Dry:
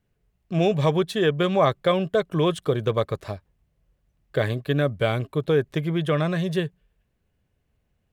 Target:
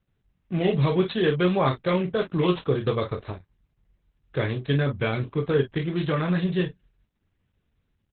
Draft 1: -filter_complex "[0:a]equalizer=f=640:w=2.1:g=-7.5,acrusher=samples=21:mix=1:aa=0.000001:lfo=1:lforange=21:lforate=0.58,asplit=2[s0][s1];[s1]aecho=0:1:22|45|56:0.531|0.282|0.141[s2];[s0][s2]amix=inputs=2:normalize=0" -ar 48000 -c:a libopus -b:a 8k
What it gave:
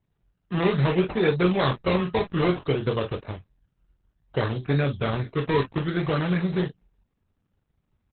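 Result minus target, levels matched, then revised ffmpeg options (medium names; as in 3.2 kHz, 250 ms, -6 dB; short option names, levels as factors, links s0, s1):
decimation with a swept rate: distortion +10 dB
-filter_complex "[0:a]equalizer=f=640:w=2.1:g=-7.5,acrusher=samples=6:mix=1:aa=0.000001:lfo=1:lforange=6:lforate=0.58,asplit=2[s0][s1];[s1]aecho=0:1:22|45|56:0.531|0.282|0.141[s2];[s0][s2]amix=inputs=2:normalize=0" -ar 48000 -c:a libopus -b:a 8k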